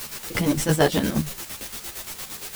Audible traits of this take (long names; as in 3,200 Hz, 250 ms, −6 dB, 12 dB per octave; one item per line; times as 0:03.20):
a quantiser's noise floor 6 bits, dither triangular
chopped level 8.7 Hz, depth 60%, duty 50%
a shimmering, thickened sound